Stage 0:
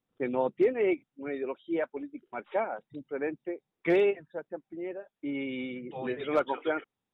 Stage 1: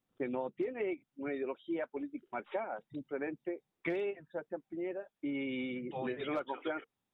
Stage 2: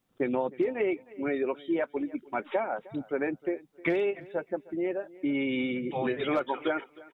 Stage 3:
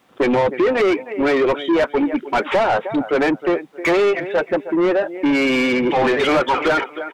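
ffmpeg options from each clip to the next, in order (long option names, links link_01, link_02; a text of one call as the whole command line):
ffmpeg -i in.wav -af "bandreject=frequency=460:width=12,acompressor=threshold=-33dB:ratio=6" out.wav
ffmpeg -i in.wav -af "aecho=1:1:310|620:0.0891|0.0187,volume=8dB" out.wav
ffmpeg -i in.wav -filter_complex "[0:a]asplit=2[link_01][link_02];[link_02]highpass=frequency=720:poles=1,volume=26dB,asoftclip=type=tanh:threshold=-15dB[link_03];[link_01][link_03]amix=inputs=2:normalize=0,lowpass=frequency=2000:poles=1,volume=-6dB,volume=6.5dB" out.wav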